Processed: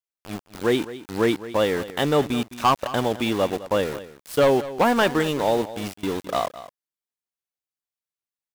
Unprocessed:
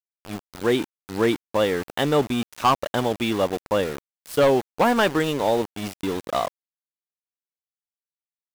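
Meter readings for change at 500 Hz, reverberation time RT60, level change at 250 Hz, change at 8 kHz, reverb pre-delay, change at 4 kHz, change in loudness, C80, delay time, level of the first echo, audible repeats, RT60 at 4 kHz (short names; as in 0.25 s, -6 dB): 0.0 dB, none, 0.0 dB, 0.0 dB, none, 0.0 dB, 0.0 dB, none, 0.211 s, -15.5 dB, 1, none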